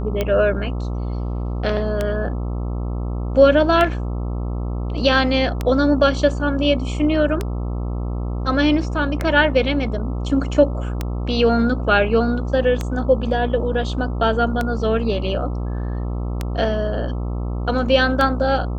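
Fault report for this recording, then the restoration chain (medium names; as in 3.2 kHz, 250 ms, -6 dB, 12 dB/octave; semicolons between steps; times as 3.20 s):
buzz 60 Hz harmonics 22 -24 dBFS
tick 33 1/3 rpm -8 dBFS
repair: de-click; de-hum 60 Hz, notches 22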